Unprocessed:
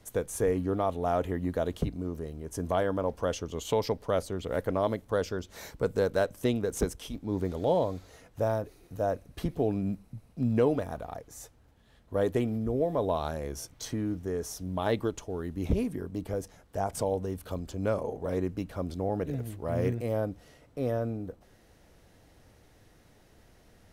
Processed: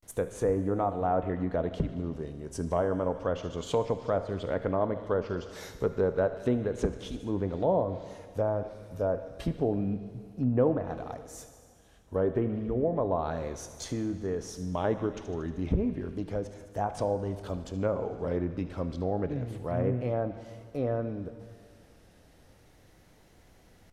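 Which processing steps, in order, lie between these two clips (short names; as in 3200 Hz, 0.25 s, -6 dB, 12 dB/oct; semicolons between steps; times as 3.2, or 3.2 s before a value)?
thin delay 74 ms, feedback 74%, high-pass 2000 Hz, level -14 dB; vibrato 0.31 Hz 82 cents; treble ducked by the level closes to 1300 Hz, closed at -23.5 dBFS; plate-style reverb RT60 2 s, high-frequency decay 0.75×, DRR 10.5 dB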